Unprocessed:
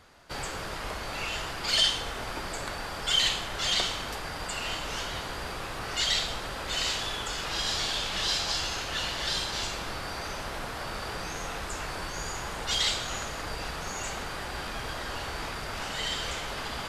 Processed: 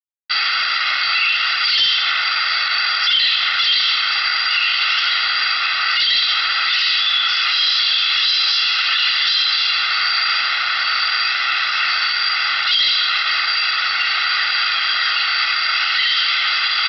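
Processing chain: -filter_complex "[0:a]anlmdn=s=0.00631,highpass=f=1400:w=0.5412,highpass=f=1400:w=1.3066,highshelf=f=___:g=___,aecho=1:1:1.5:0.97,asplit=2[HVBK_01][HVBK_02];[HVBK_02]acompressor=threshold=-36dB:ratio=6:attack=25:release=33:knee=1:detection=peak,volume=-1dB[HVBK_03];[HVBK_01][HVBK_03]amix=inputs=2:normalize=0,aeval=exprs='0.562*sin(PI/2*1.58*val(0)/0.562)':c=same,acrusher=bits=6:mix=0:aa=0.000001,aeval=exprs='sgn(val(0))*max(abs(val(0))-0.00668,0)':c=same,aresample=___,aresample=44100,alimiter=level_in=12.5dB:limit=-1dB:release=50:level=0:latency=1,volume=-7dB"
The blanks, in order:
2100, 4, 11025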